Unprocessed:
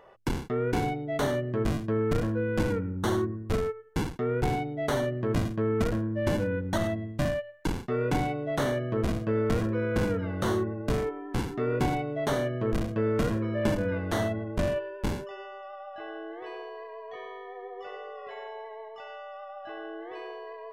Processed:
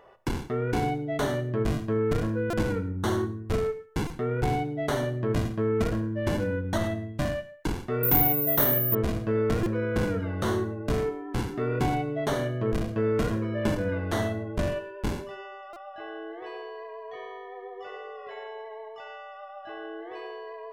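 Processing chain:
reverb whose tail is shaped and stops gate 200 ms falling, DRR 10 dB
0:08.03–0:08.95: bad sample-rate conversion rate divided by 3×, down none, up zero stuff
buffer that repeats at 0:02.50/0:04.07/0:09.63/0:15.73, samples 128, times 10

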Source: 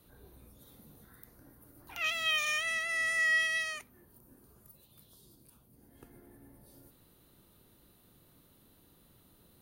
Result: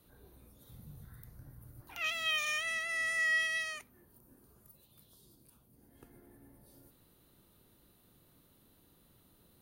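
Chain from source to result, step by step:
0:00.69–0:01.81: low shelf with overshoot 190 Hz +11 dB, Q 1.5
level −2.5 dB

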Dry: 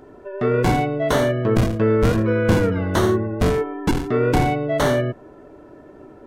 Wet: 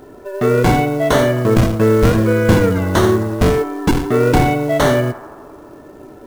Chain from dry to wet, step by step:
feedback echo with a band-pass in the loop 86 ms, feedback 80%, band-pass 970 Hz, level −14 dB
log-companded quantiser 6 bits
level +5 dB

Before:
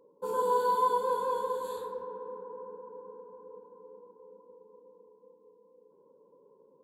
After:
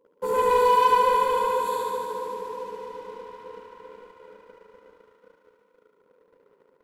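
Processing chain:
leveller curve on the samples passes 2
feedback echo with a high-pass in the loop 73 ms, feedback 82%, high-pass 340 Hz, level −4.5 dB

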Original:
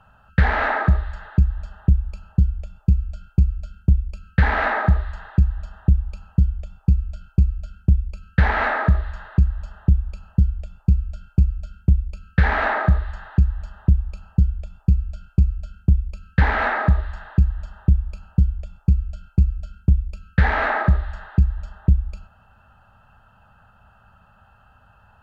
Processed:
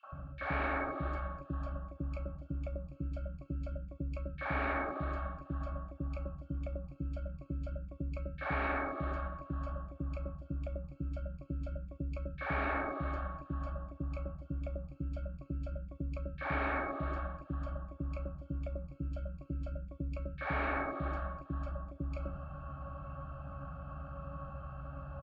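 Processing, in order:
reversed playback
downward compressor 10 to 1, threshold −26 dBFS, peak gain reduction 17 dB
reversed playback
resonances in every octave C#, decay 0.19 s
three-band delay without the direct sound highs, mids, lows 30/120 ms, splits 560/2,600 Hz
every bin compressed towards the loudest bin 4 to 1
level +2.5 dB

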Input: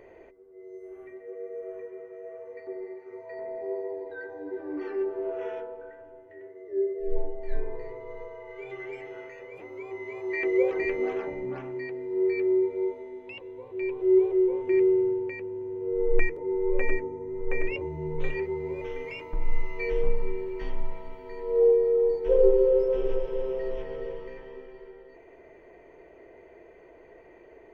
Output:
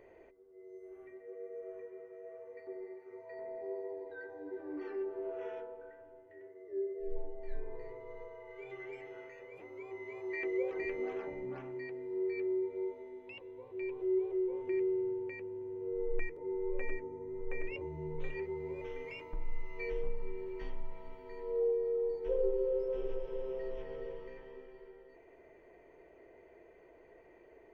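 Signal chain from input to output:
downward compressor 1.5 to 1, threshold −29 dBFS, peak gain reduction 6 dB
level −7.5 dB

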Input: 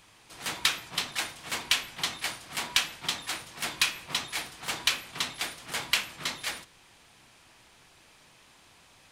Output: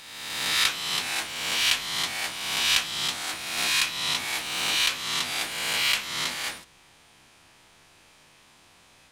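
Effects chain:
peak hold with a rise ahead of every peak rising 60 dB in 1.41 s
mains-hum notches 60/120 Hz
0:03.58–0:06.34: multiband upward and downward compressor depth 40%
level −1.5 dB

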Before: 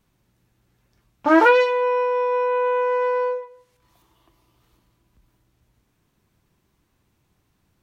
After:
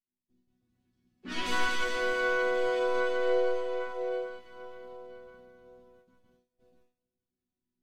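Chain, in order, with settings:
phase distortion by the signal itself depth 0.64 ms
octave-band graphic EQ 125/250/500/1,000/2,000/4,000 Hz +9/+10/−4/−10/−3/+5 dB
dense smooth reverb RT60 4.6 s, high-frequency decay 0.95×, DRR −5 dB
noise gate with hold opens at −43 dBFS
resonators tuned to a chord B3 fifth, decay 0.48 s
speech leveller within 4 dB 0.5 s
high-shelf EQ 3,800 Hz −9.5 dB
pitch-shifted copies added −5 semitones −7 dB, +5 semitones −14 dB, +7 semitones −14 dB
level +4.5 dB

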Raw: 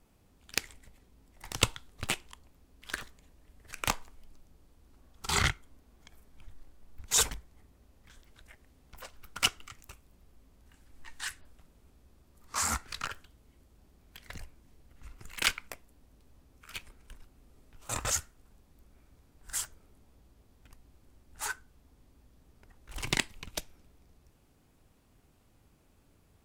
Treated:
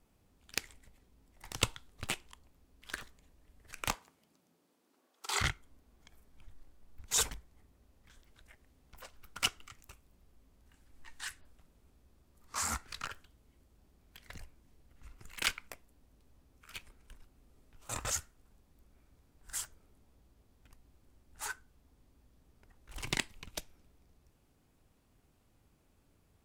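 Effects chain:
0:03.93–0:05.40: high-pass filter 94 Hz → 400 Hz 24 dB per octave
level −4.5 dB

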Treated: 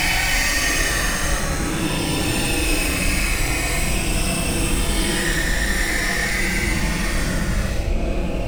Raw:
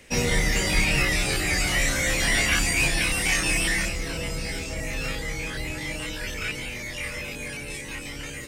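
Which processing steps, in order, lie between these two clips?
adaptive Wiener filter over 25 samples
leveller curve on the samples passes 5
extreme stretch with random phases 14×, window 0.05 s, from 0:03.30
level −6.5 dB

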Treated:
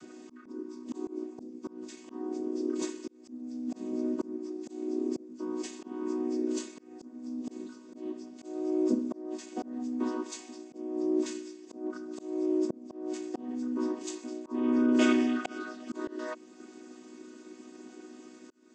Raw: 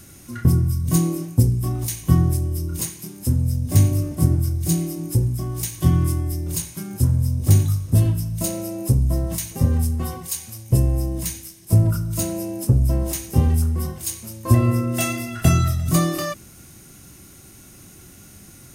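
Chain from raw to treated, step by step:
channel vocoder with a chord as carrier major triad, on B3
volume swells 582 ms
level −3 dB

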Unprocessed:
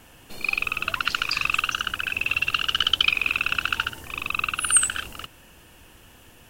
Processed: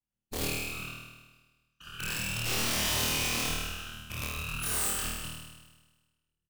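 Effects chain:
0:02.45–0:03.46: linear delta modulator 32 kbit/s, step −20 dBFS
flanger 2 Hz, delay 9.6 ms, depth 6.9 ms, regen +60%
downward compressor 8 to 1, threshold −28 dBFS, peak gain reduction 11.5 dB
repeating echo 523 ms, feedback 38%, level −19.5 dB
brickwall limiter −27 dBFS, peak gain reduction 10.5 dB
0:00.94–0:01.80: tuned comb filter 210 Hz, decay 0.23 s, harmonics all, mix 70%
noise gate −39 dBFS, range −48 dB
bass and treble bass +14 dB, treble +7 dB
random phases in short frames
wrap-around overflow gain 28 dB
flutter between parallel walls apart 4.4 metres, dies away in 1.3 s
level −2 dB

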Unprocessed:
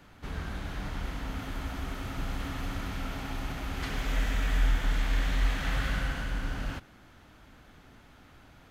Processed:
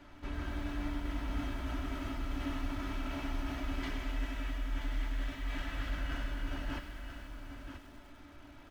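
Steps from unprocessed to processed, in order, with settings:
low-pass filter 3,900 Hz 6 dB per octave
comb filter 3.1 ms, depth 55%
reversed playback
downward compressor, threshold −32 dBFS, peak gain reduction 14 dB
reversed playback
tuned comb filter 290 Hz, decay 0.2 s, harmonics all, mix 70%
on a send: single-tap delay 982 ms −9 dB
on the sum: feedback echo at a low word length 100 ms, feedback 80%, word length 10 bits, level −14 dB
level +7 dB

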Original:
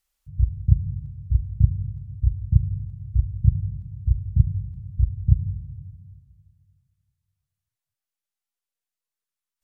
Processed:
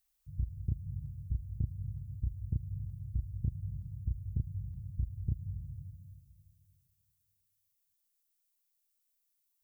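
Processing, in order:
downward compressor, threshold −23 dBFS, peak gain reduction 14 dB
background noise violet −72 dBFS
level −7 dB

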